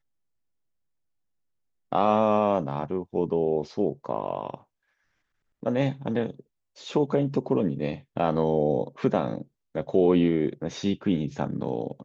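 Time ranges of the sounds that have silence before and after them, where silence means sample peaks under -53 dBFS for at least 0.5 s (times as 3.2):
1.92–4.63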